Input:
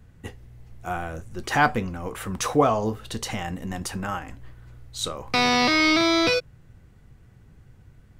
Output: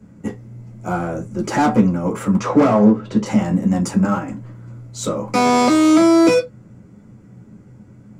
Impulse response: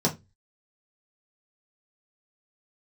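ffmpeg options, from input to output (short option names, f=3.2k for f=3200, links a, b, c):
-filter_complex "[0:a]asettb=1/sr,asplit=3[a][b][c];[a]atrim=end=2.374[d];[b]atrim=start=2.37:end=3.26,asetpts=PTS-STARTPTS,afade=t=in:d=0.004:c=qsin,afade=t=out:st=0.886:d=0.004:c=qsin,lowpass=3.6k[e];[c]atrim=start=3.256[f];[d][e]acrossfade=d=0.004:c1=hsin:c2=qsin[g];[g][f]acrossfade=d=0.004:c1=qsin:c2=hsin,volume=21.5dB,asoftclip=hard,volume=-21.5dB[h];[1:a]atrim=start_sample=2205,atrim=end_sample=6174,asetrate=57330,aresample=44100[i];[h][i]afir=irnorm=-1:irlink=0,volume=-4dB"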